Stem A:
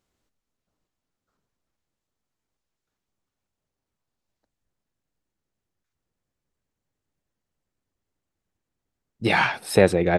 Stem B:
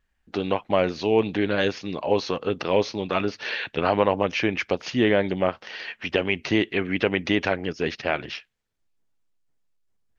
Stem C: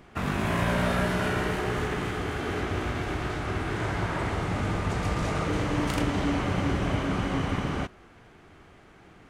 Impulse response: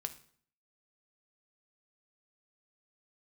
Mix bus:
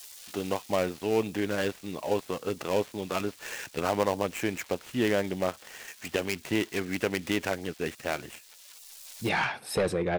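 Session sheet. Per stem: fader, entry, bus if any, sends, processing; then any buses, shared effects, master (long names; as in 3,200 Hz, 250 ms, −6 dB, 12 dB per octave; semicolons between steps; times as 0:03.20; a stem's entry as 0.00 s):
−8.0 dB, 0.00 s, send −6.5 dB, soft clipping −14.5 dBFS, distortion −9 dB
−6.0 dB, 0.00 s, no send, gap after every zero crossing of 0.12 ms
−6.0 dB, 0.00 s, no send, sign of each sample alone; gate on every frequency bin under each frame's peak −20 dB weak; Chebyshev high-pass filter 380 Hz, order 2; automatic ducking −9 dB, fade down 1.10 s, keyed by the second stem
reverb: on, RT60 0.55 s, pre-delay 3 ms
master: no processing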